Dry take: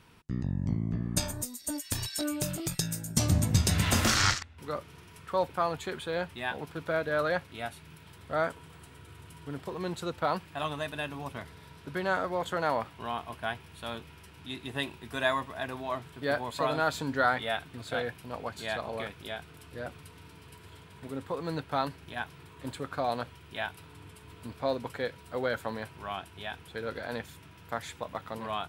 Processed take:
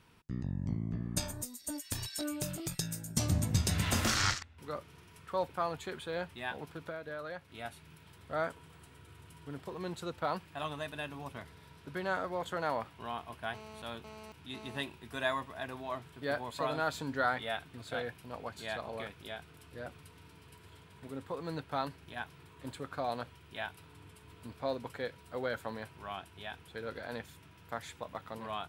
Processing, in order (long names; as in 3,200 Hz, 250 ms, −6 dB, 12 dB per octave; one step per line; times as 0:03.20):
0:06.72–0:07.65: downward compressor 5 to 1, threshold −34 dBFS, peak gain reduction 9.5 dB
0:13.54–0:14.82: phone interference −45 dBFS
level −5 dB